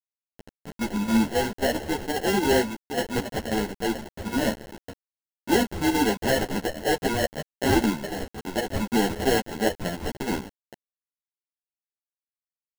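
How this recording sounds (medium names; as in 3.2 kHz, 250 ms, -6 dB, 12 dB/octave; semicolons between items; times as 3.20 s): aliases and images of a low sample rate 1.2 kHz, jitter 0%; chopped level 3.7 Hz, depth 60%, duty 80%; a quantiser's noise floor 6-bit, dither none; a shimmering, thickened sound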